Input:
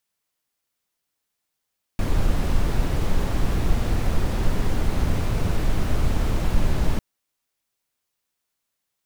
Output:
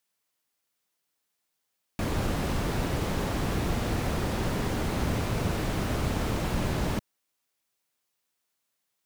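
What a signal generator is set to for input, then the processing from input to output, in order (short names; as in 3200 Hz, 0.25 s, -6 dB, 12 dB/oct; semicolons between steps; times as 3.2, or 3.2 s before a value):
noise brown, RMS -19 dBFS 5.00 s
HPF 130 Hz 6 dB/oct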